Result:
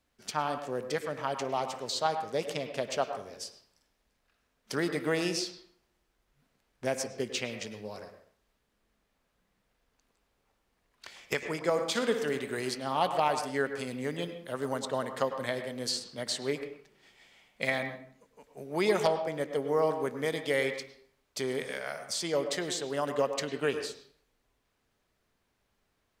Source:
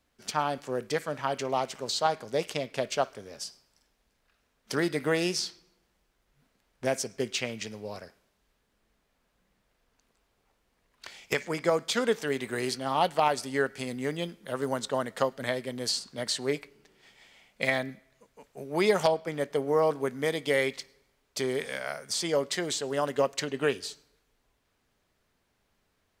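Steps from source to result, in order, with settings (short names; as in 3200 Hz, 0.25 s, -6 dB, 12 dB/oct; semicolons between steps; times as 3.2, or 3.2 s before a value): 11.7–12.39 flutter echo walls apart 10.3 m, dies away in 0.39 s; on a send at -8 dB: reverb RT60 0.50 s, pre-delay 96 ms; on the sum: gain -3 dB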